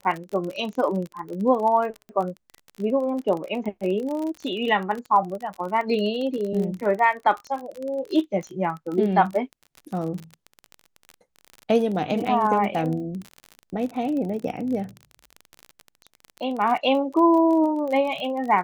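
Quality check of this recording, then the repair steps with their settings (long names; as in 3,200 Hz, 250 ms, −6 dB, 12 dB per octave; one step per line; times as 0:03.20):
surface crackle 32 per second −29 dBFS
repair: click removal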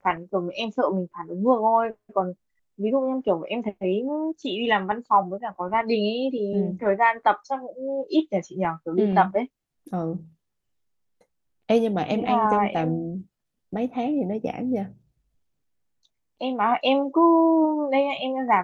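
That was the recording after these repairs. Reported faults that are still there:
none of them is left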